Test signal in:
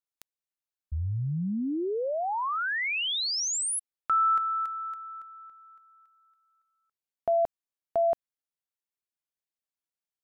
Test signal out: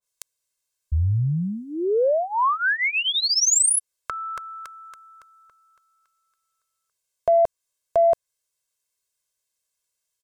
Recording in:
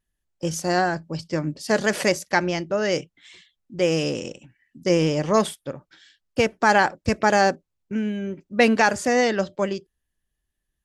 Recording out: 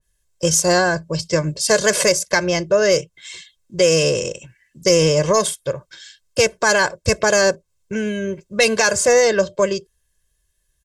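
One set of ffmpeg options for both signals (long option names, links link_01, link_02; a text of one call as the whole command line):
ffmpeg -i in.wav -filter_complex "[0:a]equalizer=frequency=7700:width=0.72:gain=11,aecho=1:1:1.9:0.83,acrossover=split=3200[link_01][link_02];[link_01]alimiter=limit=-11.5dB:level=0:latency=1:release=208[link_03];[link_03][link_02]amix=inputs=2:normalize=0,acontrast=41,adynamicequalizer=threshold=0.0282:dfrequency=1800:dqfactor=0.7:tfrequency=1800:tqfactor=0.7:attack=5:release=100:ratio=0.375:range=3.5:mode=cutabove:tftype=highshelf" out.wav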